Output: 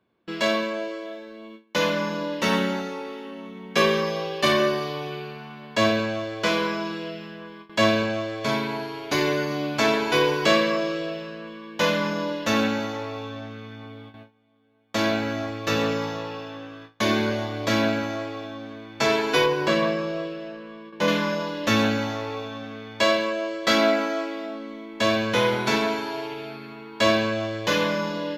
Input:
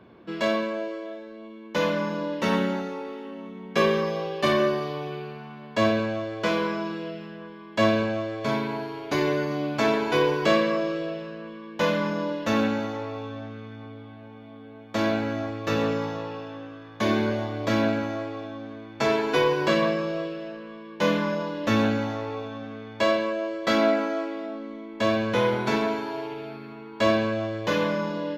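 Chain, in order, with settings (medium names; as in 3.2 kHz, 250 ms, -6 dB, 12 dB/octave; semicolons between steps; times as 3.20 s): gate with hold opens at -34 dBFS; treble shelf 2 kHz +8.5 dB, from 19.46 s +2 dB, from 21.08 s +9.5 dB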